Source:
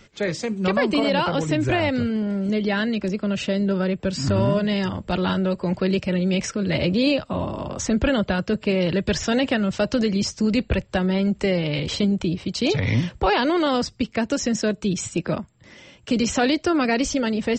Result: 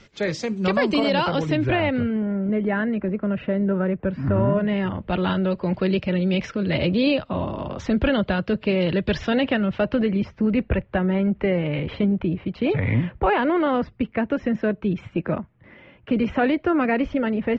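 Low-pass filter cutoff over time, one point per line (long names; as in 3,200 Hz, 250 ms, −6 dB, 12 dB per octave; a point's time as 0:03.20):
low-pass filter 24 dB per octave
0:01.24 6,600 Hz
0:01.71 3,500 Hz
0:02.41 2,000 Hz
0:04.46 2,000 Hz
0:05.42 3,900 Hz
0:09.14 3,900 Hz
0:10.30 2,400 Hz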